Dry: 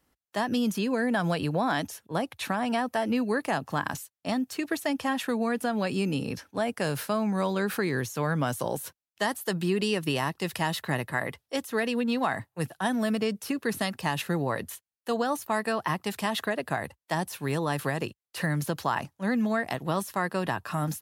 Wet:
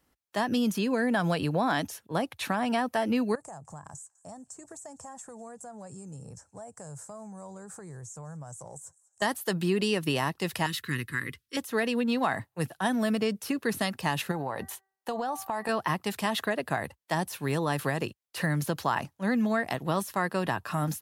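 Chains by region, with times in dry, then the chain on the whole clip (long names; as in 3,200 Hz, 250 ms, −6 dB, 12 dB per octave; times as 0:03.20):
0:03.35–0:09.22: drawn EQ curve 150 Hz 0 dB, 260 Hz −16 dB, 460 Hz −8 dB, 760 Hz −3 dB, 1,100 Hz −8 dB, 1,700 Hz −15 dB, 2,800 Hz −28 dB, 4,300 Hz −20 dB, 7,700 Hz +13 dB, 13,000 Hz −22 dB + downward compressor 3 to 1, threshold −43 dBFS + delay with a high-pass on its return 201 ms, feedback 64%, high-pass 2,500 Hz, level −20.5 dB
0:10.66–0:11.57: Butterworth band-reject 700 Hz, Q 0.68 + parametric band 180 Hz −7 dB 0.32 octaves
0:14.31–0:15.69: parametric band 820 Hz +10.5 dB 0.71 octaves + hum removal 386.3 Hz, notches 5 + downward compressor 12 to 1, threshold −27 dBFS
whole clip: no processing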